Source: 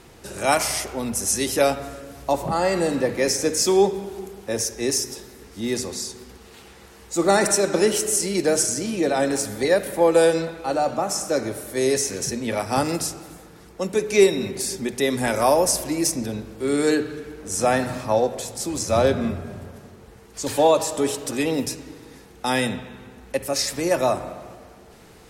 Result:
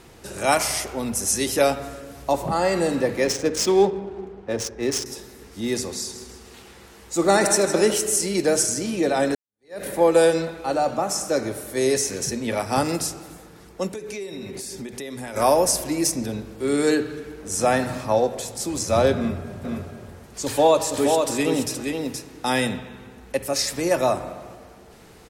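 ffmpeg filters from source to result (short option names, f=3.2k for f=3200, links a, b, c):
-filter_complex "[0:a]asettb=1/sr,asplit=3[a][b][c];[a]atrim=end=3.244[d];[b]atrim=start=3.24:end=5.06,asetpts=PTS-STARTPTS,afade=t=in:d=0.004:c=qsin,afade=t=out:st=1.816:d=0.004:c=qsin,adynamicsmooth=sensitivity=3.5:basefreq=1.7k[e];[c]atrim=start=5.056[f];[d][e]acrossfade=d=0.004:c1=hsin:c2=qsin[g];[g][f]acrossfade=d=0.004:c1=qsin:c2=hsin,asettb=1/sr,asplit=3[h][i][j];[h]atrim=end=5.924[k];[i]atrim=start=5.92:end=7.94,asetpts=PTS-STARTPTS,afade=t=in:d=0.004:c=qsin,afade=t=out:st=2.016:d=0.004:c=qsin,aecho=1:1:158|316|474|632:0.266|0.114|0.0492|0.0212,atrim=end_sample=89082[l];[j]atrim=start=7.936[m];[k][l]acrossfade=d=0.004:c1=hsin:c2=qsin[n];[n][m]acrossfade=d=0.004:c1=qsin:c2=hsin,asplit=3[o][p][q];[o]afade=t=out:st=13.88:d=0.02[r];[p]acompressor=threshold=-30dB:ratio=8:attack=3.2:release=140:knee=1:detection=peak,afade=t=in:st=13.88:d=0.02,afade=t=out:st=15.35:d=0.02[s];[q]afade=t=in:st=15.35:d=0.02[t];[r][s][t]amix=inputs=3:normalize=0,asplit=3[u][v][w];[u]afade=t=out:st=19.63:d=0.02[x];[v]aecho=1:1:473:0.596,afade=t=in:st=19.63:d=0.02,afade=t=out:st=22.77:d=0.02[y];[w]afade=t=in:st=22.77:d=0.02[z];[x][y][z]amix=inputs=3:normalize=0,asplit=2[aa][ab];[aa]atrim=end=9.35,asetpts=PTS-STARTPTS,afade=t=out:st=9.346:d=0.004:c=hsin[ac];[ab]atrim=start=9.35,asetpts=PTS-STARTPTS,afade=t=in:d=0.48:c=exp[ad];[ac][ad]concat=n=2:v=0:a=1"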